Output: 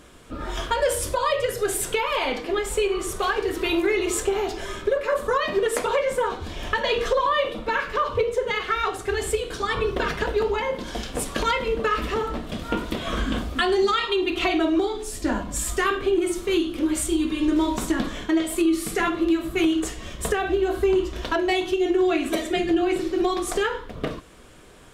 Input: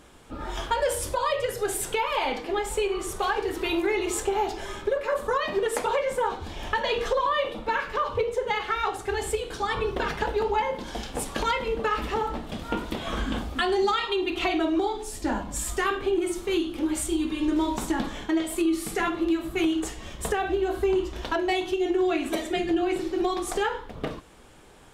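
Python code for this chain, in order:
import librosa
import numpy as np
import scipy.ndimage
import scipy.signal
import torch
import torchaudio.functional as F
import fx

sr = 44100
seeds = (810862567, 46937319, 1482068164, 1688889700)

y = fx.notch(x, sr, hz=840.0, q=5.4)
y = F.gain(torch.from_numpy(y), 3.5).numpy()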